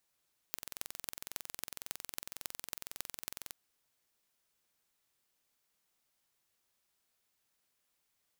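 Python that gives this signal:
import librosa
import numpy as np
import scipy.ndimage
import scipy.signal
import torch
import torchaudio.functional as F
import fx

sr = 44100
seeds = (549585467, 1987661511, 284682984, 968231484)

y = fx.impulse_train(sr, length_s=2.98, per_s=21.9, accent_every=6, level_db=-9.0)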